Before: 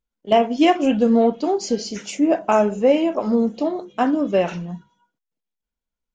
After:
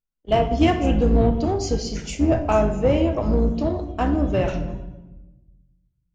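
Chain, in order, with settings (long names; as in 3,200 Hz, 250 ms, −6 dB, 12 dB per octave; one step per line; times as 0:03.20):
sub-octave generator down 2 octaves, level +3 dB
noise gate −34 dBFS, range −7 dB
in parallel at −5 dB: soft clipping −18.5 dBFS, distortion −7 dB
on the sum: rectangular room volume 520 cubic metres, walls mixed, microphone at 0.61 metres
level −6 dB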